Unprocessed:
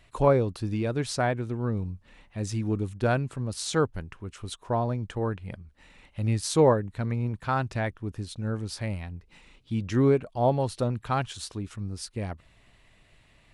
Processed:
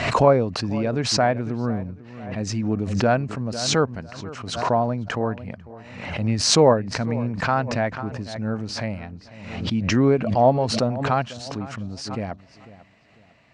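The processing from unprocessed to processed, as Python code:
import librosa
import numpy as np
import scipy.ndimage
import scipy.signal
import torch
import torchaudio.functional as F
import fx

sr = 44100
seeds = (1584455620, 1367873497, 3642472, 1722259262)

y = fx.cabinet(x, sr, low_hz=120.0, low_slope=12, high_hz=6100.0, hz=(230.0, 360.0, 670.0, 3500.0), db=(3, -4, 5, -9))
y = fx.echo_filtered(y, sr, ms=497, feedback_pct=32, hz=3800.0, wet_db=-17.5)
y = fx.pre_swell(y, sr, db_per_s=54.0)
y = y * librosa.db_to_amplitude(4.0)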